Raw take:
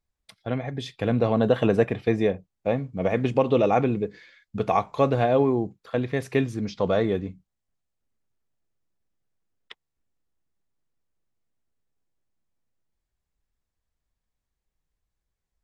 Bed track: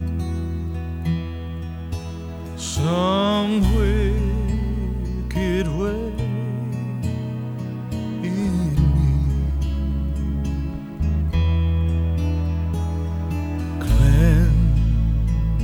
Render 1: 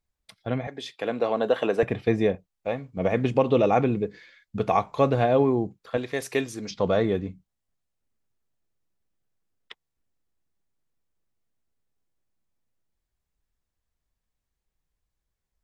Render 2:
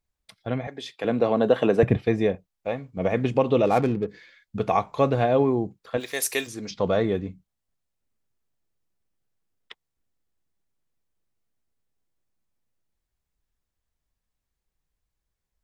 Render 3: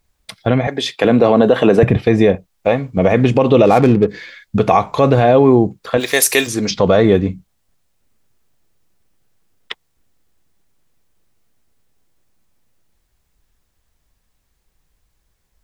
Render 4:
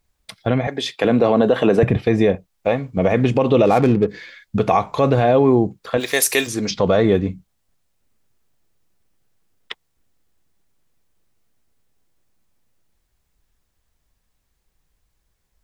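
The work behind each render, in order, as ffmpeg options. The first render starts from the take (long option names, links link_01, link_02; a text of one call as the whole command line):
ffmpeg -i in.wav -filter_complex "[0:a]asettb=1/sr,asplit=3[link_01][link_02][link_03];[link_01]atrim=end=0.674[link_04];[link_02]atrim=start=0.67:end=1.83,asetpts=PTS-STARTPTS,afade=type=in:duration=0.004:curve=qsin,afade=type=out:start_time=1.156:duration=0.004:curve=qsin,highpass=380[link_05];[link_03]atrim=start=1.826[link_06];[link_04][link_05]acrossfade=duration=0.004:curve1=hsin:curve2=qsin[link_07];[link_07][link_06]acrossfade=duration=0.004:curve1=qsin:curve2=hsin,asettb=1/sr,asplit=3[link_08][link_09][link_10];[link_08]atrim=end=2.354[link_11];[link_09]atrim=start=2.35:end=2.97,asetpts=PTS-STARTPTS,afade=type=in:duration=0.004:curve=qsin,afade=type=out:start_time=0.616:duration=0.004:curve=qsin,equalizer=frequency=150:width=0.34:gain=-8.5[link_12];[link_10]atrim=start=2.966[link_13];[link_11][link_12]acrossfade=duration=0.004:curve1=hsin:curve2=qsin[link_14];[link_14][link_13]acrossfade=duration=0.004:curve1=qsin:curve2=hsin,asettb=1/sr,asplit=3[link_15][link_16][link_17];[link_15]atrim=end=5.974[link_18];[link_16]atrim=start=5.97:end=6.71,asetpts=PTS-STARTPTS,afade=type=in:duration=0.004:curve=qsin,afade=type=out:start_time=0.736:duration=0.004:curve=qsin,bass=frequency=250:gain=-12,treble=frequency=4000:gain=9[link_19];[link_17]atrim=start=6.706[link_20];[link_18][link_19]acrossfade=duration=0.004:curve1=hsin:curve2=qsin[link_21];[link_21][link_20]acrossfade=duration=0.004:curve1=qsin:curve2=hsin" out.wav
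ffmpeg -i in.wav -filter_complex "[0:a]asettb=1/sr,asplit=3[link_01][link_02][link_03];[link_01]atrim=end=1.044[link_04];[link_02]atrim=start=1.04:end=1.97,asetpts=PTS-STARTPTS,afade=type=in:duration=0.004:curve=qsin,afade=type=out:start_time=0.926:duration=0.004:curve=qsin,equalizer=frequency=120:width_type=o:width=2.8:gain=11[link_05];[link_03]atrim=start=1.966[link_06];[link_04][link_05]acrossfade=duration=0.004:curve1=hsin:curve2=qsin[link_07];[link_07][link_06]acrossfade=duration=0.004:curve1=qsin:curve2=hsin,asplit=3[link_08][link_09][link_10];[link_08]afade=type=out:start_time=3.65:duration=0.02[link_11];[link_09]adynamicsmooth=sensitivity=8:basefreq=670,afade=type=in:start_time=3.65:duration=0.02,afade=type=out:start_time=4.07:duration=0.02[link_12];[link_10]afade=type=in:start_time=4.07:duration=0.02[link_13];[link_11][link_12][link_13]amix=inputs=3:normalize=0,asplit=3[link_14][link_15][link_16];[link_14]afade=type=out:start_time=5.99:duration=0.02[link_17];[link_15]aemphasis=mode=production:type=riaa,afade=type=in:start_time=5.99:duration=0.02,afade=type=out:start_time=6.46:duration=0.02[link_18];[link_16]afade=type=in:start_time=6.46:duration=0.02[link_19];[link_17][link_18][link_19]amix=inputs=3:normalize=0" out.wav
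ffmpeg -i in.wav -filter_complex "[0:a]asplit=2[link_01][link_02];[link_02]acompressor=threshold=-30dB:ratio=6,volume=-3dB[link_03];[link_01][link_03]amix=inputs=2:normalize=0,alimiter=level_in=12dB:limit=-1dB:release=50:level=0:latency=1" out.wav
ffmpeg -i in.wav -af "volume=-4dB" out.wav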